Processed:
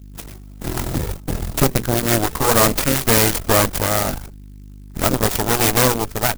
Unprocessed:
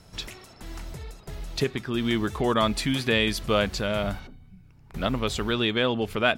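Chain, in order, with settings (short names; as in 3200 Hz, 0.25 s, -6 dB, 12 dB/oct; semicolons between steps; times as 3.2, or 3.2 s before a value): notches 60/120/180/240 Hz; gate -42 dBFS, range -16 dB; bell 140 Hz +5 dB 1.5 oct, from 1.94 s -7 dB; AGC gain up to 14 dB; hum 50 Hz, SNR 15 dB; added harmonics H 8 -8 dB, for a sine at -0.5 dBFS; clock jitter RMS 0.099 ms; gain -3.5 dB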